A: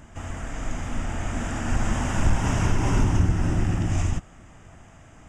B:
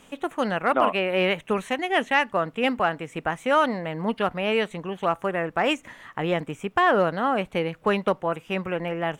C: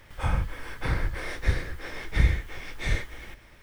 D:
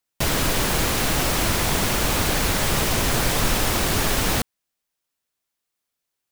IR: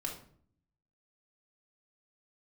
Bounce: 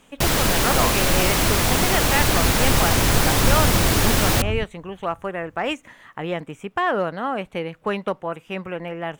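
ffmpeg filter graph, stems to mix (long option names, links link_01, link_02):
-filter_complex "[0:a]afwtdn=0.0251,adelay=450,volume=-1.5dB[link_01];[1:a]volume=-2dB[link_02];[2:a]volume=-15.5dB[link_03];[3:a]volume=2dB[link_04];[link_01][link_02][link_03][link_04]amix=inputs=4:normalize=0"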